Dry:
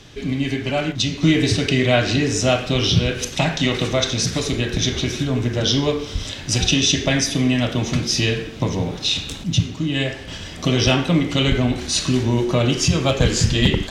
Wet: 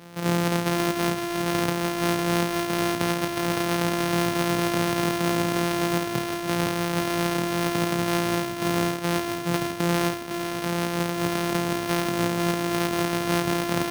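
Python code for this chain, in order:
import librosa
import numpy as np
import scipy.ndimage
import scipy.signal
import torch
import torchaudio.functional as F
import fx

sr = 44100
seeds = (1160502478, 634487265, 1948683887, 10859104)

y = np.r_[np.sort(x[:len(x) // 256 * 256].reshape(-1, 256), axis=1).ravel(), x[len(x) // 256 * 256:]]
y = scipy.signal.sosfilt(scipy.signal.butter(4, 120.0, 'highpass', fs=sr, output='sos'), y)
y = fx.over_compress(y, sr, threshold_db=-22.0, ratio=-1.0)
y = fx.doubler(y, sr, ms=29.0, db=-11.0)
y = y + 10.0 ** (-7.0 / 20.0) * np.pad(y, (int(508 * sr / 1000.0), 0))[:len(y)]
y = np.repeat(y[::6], 6)[:len(y)]
y = F.gain(torch.from_numpy(y), -4.0).numpy()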